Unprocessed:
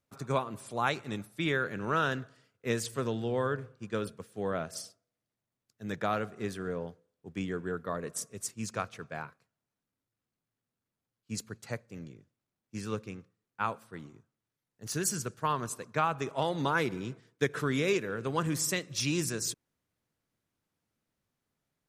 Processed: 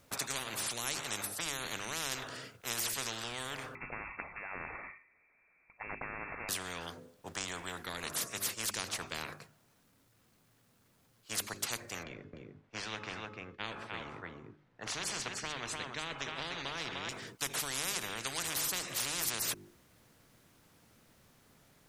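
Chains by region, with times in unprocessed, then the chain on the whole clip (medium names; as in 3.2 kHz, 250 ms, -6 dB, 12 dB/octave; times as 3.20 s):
3.75–6.49 s: compression 2.5:1, threshold -40 dBFS + frequency inversion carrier 2.5 kHz
12.03–17.09 s: low-pass 2.3 kHz + de-hum 427.5 Hz, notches 34 + delay 300 ms -11 dB
whole clip: hum notches 50/100/150/200/250/300/350/400 Hz; spectrum-flattening compressor 10:1; trim -5 dB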